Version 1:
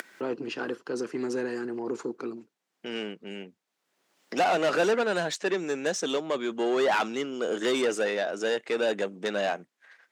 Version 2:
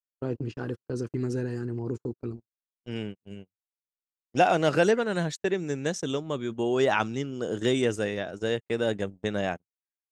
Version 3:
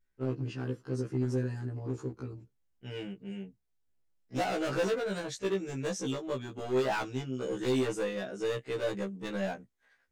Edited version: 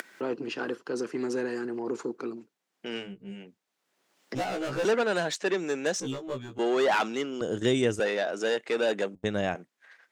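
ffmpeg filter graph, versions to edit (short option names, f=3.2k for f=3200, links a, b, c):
-filter_complex "[2:a]asplit=3[a][b][c];[1:a]asplit=2[d][e];[0:a]asplit=6[f][g][h][i][j][k];[f]atrim=end=3.1[l];[a]atrim=start=2.94:end=3.5[m];[g]atrim=start=3.34:end=4.352[n];[b]atrim=start=4.348:end=4.852[o];[h]atrim=start=4.848:end=6.002[p];[c]atrim=start=5.998:end=6.592[q];[i]atrim=start=6.588:end=7.412[r];[d]atrim=start=7.408:end=8.002[s];[j]atrim=start=7.998:end=9.152[t];[e]atrim=start=9.148:end=9.552[u];[k]atrim=start=9.548[v];[l][m]acrossfade=d=0.16:c1=tri:c2=tri[w];[w][n]acrossfade=d=0.16:c1=tri:c2=tri[x];[x][o]acrossfade=d=0.004:c1=hsin:c2=hsin[y];[y][p]acrossfade=d=0.004:c1=hsin:c2=hsin[z];[z][q]acrossfade=d=0.004:c1=hsin:c2=hsin[aa];[aa][r]acrossfade=d=0.004:c1=hsin:c2=hsin[ab];[ab][s]acrossfade=d=0.004:c1=hsin:c2=hsin[ac];[ac][t]acrossfade=d=0.004:c1=hsin:c2=hsin[ad];[ad][u]acrossfade=d=0.004:c1=hsin:c2=hsin[ae];[ae][v]acrossfade=d=0.004:c1=hsin:c2=hsin"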